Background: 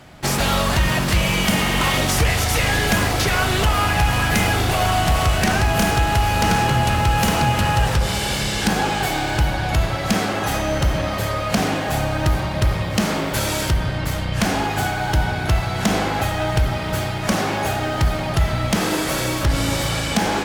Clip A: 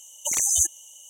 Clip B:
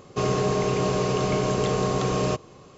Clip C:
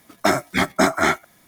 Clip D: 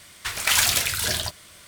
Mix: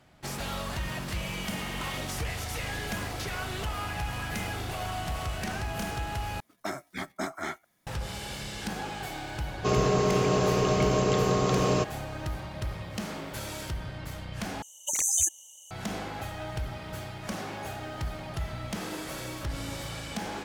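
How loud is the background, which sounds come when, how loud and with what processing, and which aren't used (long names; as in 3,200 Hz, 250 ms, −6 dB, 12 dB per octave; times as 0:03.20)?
background −15.5 dB
0:06.40: overwrite with C −16.5 dB
0:09.48: mix in B −1 dB
0:14.62: overwrite with A −4 dB + loose part that buzzes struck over −36 dBFS, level −29 dBFS
not used: D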